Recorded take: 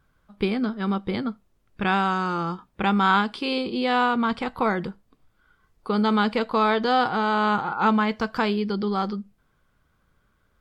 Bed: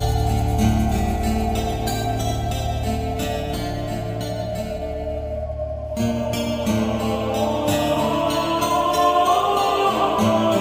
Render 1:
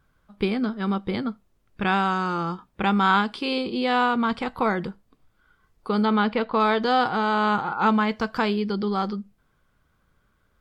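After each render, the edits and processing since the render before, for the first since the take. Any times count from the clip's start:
0:06.05–0:06.60: low-pass filter 3,500 Hz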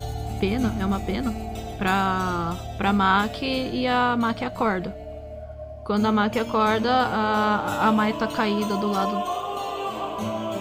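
mix in bed −10.5 dB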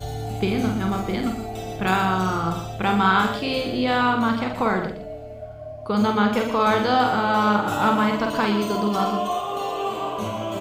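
double-tracking delay 48 ms −5 dB
single-tap delay 118 ms −10 dB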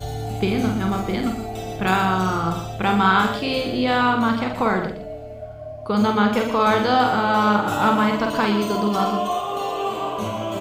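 level +1.5 dB

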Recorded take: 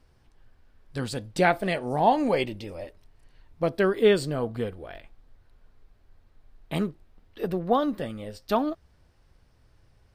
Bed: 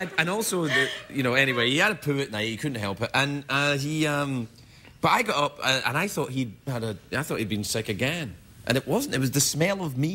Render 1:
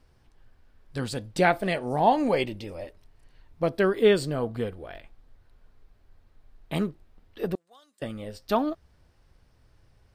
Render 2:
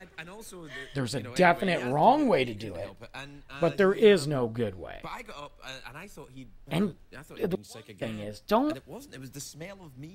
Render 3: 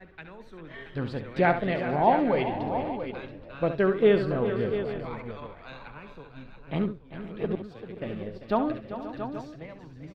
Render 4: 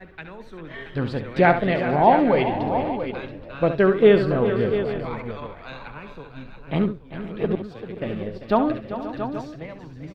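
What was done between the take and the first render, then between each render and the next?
0:07.55–0:08.02: resonant band-pass 7,800 Hz, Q 3.7
mix in bed −18.5 dB
high-frequency loss of the air 340 metres; on a send: multi-tap delay 69/393/462/530/678/827 ms −10/−12.5/−19/−16.5/−10/−15.5 dB
level +6 dB; brickwall limiter −3 dBFS, peak gain reduction 0.5 dB

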